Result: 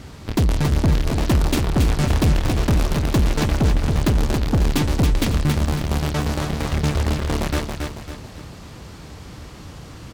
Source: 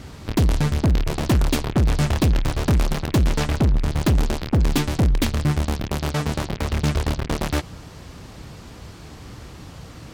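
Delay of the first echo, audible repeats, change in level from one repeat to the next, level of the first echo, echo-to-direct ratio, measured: 0.276 s, 4, -7.5 dB, -5.0 dB, -4.0 dB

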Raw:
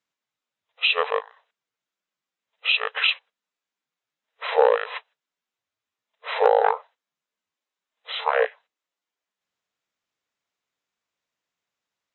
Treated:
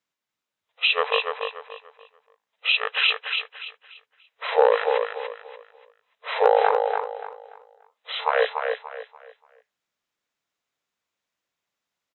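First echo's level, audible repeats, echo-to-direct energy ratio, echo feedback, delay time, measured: -5.5 dB, 3, -5.0 dB, 30%, 0.29 s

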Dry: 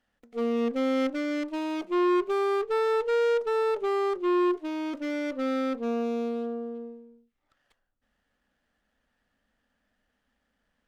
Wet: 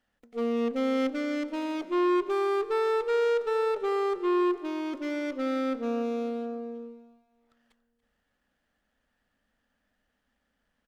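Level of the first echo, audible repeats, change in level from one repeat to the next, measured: -17.5 dB, 3, -7.0 dB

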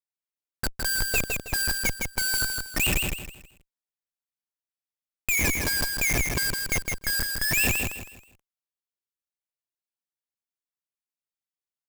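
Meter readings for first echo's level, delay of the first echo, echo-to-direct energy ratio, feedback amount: -4.0 dB, 0.16 s, -3.5 dB, 31%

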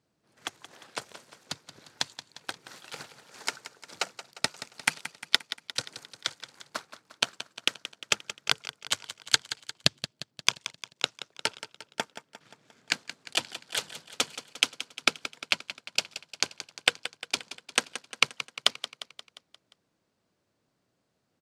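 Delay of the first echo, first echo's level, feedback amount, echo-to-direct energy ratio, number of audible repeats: 0.176 s, -13.0 dB, 56%, -11.5 dB, 5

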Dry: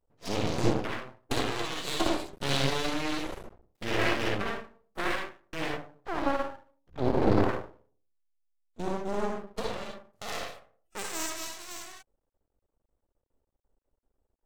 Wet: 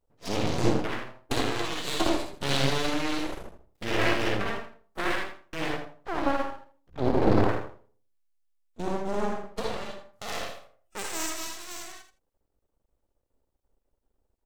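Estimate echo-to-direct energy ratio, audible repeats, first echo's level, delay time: -10.0 dB, 2, -10.0 dB, 82 ms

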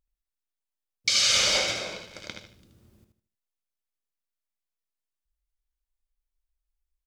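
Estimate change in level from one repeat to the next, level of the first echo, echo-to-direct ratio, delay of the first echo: -10.5 dB, -7.0 dB, -6.5 dB, 77 ms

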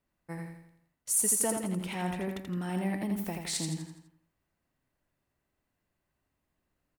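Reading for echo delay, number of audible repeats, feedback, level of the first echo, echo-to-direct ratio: 83 ms, 5, 46%, -5.0 dB, -4.0 dB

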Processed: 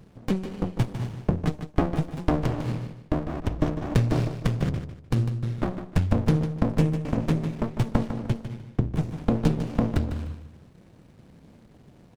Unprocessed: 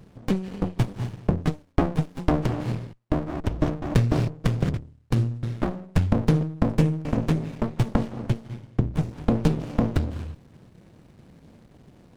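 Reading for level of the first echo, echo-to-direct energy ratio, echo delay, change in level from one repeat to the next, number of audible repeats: -10.0 dB, -9.5 dB, 0.151 s, -11.5 dB, 3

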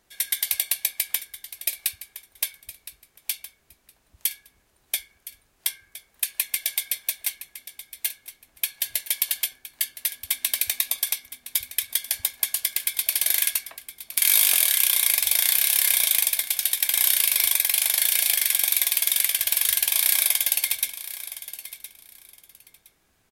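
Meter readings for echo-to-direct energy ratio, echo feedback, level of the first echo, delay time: -14.5 dB, 20%, -14.5 dB, 1.015 s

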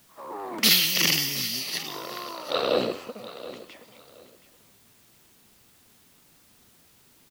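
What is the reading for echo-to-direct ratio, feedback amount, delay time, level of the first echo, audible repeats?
-15.5 dB, 24%, 0.724 s, -15.5 dB, 2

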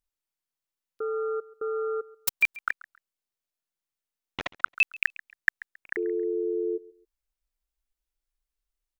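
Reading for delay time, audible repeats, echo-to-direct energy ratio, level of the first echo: 0.136 s, 2, -20.5 dB, -21.0 dB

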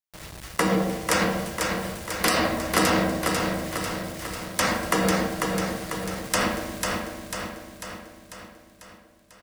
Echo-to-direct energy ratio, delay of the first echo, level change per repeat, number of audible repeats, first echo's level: -2.5 dB, 0.495 s, -5.0 dB, 7, -4.0 dB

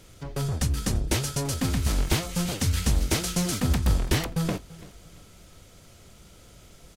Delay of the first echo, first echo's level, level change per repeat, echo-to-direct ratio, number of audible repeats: 0.337 s, -20.5 dB, -9.0 dB, -20.0 dB, 2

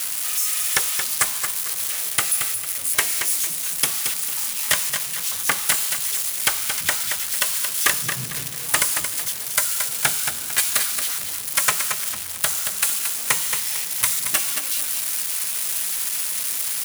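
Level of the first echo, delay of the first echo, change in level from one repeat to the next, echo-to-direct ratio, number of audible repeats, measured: -7.0 dB, 0.225 s, -9.5 dB, -6.5 dB, 3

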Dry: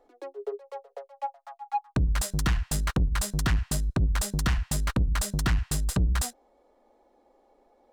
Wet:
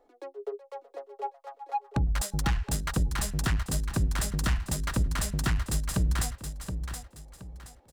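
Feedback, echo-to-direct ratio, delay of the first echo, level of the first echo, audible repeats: 32%, -7.5 dB, 0.723 s, -8.0 dB, 3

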